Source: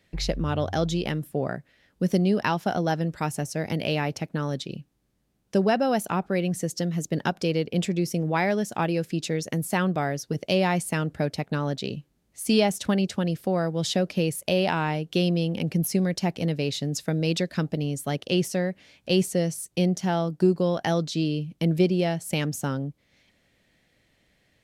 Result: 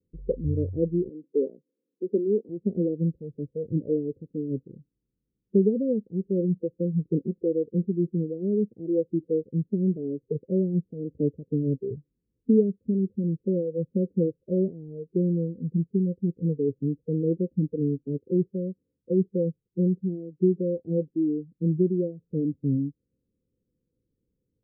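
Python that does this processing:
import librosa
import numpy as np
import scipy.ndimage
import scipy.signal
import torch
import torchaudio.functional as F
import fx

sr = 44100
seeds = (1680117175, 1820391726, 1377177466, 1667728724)

y = fx.highpass(x, sr, hz=250.0, slope=24, at=(1.09, 2.49))
y = fx.noise_reduce_blind(y, sr, reduce_db=16)
y = scipy.signal.sosfilt(scipy.signal.cheby1(8, 1.0, 520.0, 'lowpass', fs=sr, output='sos'), y)
y = fx.rider(y, sr, range_db=4, speed_s=0.5)
y = F.gain(torch.from_numpy(y), 3.0).numpy()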